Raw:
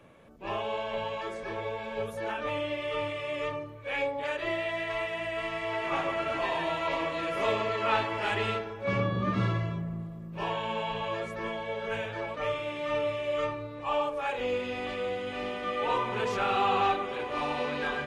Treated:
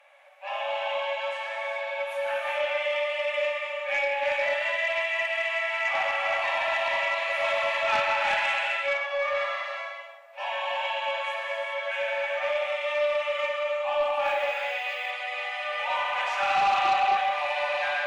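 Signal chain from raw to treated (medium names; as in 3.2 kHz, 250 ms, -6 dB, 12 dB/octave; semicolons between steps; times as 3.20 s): rippled Chebyshev high-pass 550 Hz, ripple 9 dB; gated-style reverb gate 450 ms flat, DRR -2 dB; 14.24–15.10 s: added noise violet -71 dBFS; in parallel at -10 dB: sine folder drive 7 dB, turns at -17 dBFS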